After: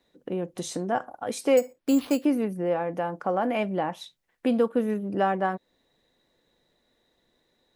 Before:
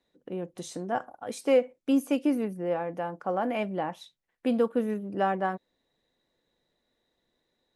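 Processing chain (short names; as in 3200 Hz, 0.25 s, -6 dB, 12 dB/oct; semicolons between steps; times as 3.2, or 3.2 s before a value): in parallel at +1.5 dB: compressor, threshold -35 dBFS, peak gain reduction 16.5 dB; 1.57–2.25 on the sum: careless resampling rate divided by 6×, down none, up hold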